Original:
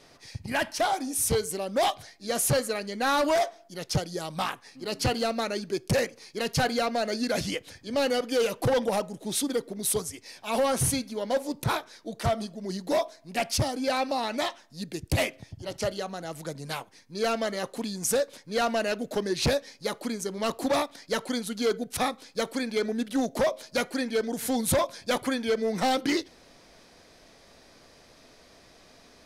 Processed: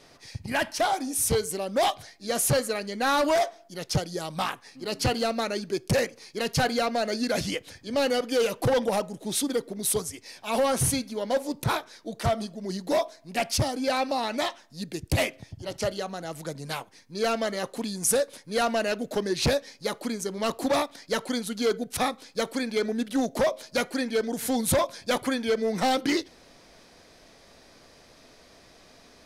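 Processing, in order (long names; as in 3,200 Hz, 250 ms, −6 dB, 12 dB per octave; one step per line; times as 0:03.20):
0:17.88–0:18.63: parametric band 10,000 Hz +8 dB 0.29 octaves
level +1 dB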